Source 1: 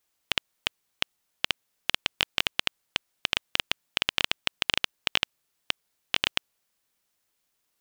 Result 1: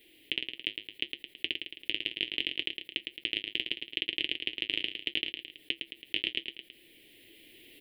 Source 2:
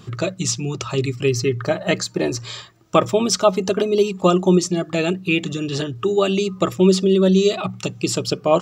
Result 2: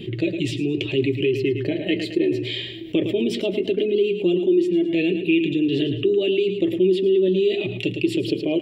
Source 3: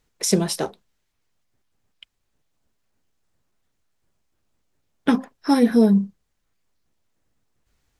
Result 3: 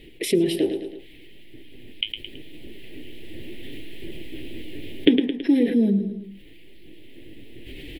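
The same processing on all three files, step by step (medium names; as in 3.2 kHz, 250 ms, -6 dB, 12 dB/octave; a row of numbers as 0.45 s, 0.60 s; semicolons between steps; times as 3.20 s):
recorder AGC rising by 8.9 dB/s; flange 0.74 Hz, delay 5 ms, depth 4.7 ms, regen -49%; FFT filter 200 Hz 0 dB, 330 Hz +15 dB, 1.3 kHz -29 dB, 1.9 kHz +3 dB, 3.1 kHz +9 dB, 6.2 kHz -23 dB, 10 kHz -7 dB; on a send: feedback delay 109 ms, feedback 27%, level -13 dB; on the sum: level flattener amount 50%; trim -10.5 dB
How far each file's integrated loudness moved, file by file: -4.5 LU, -2.0 LU, -2.0 LU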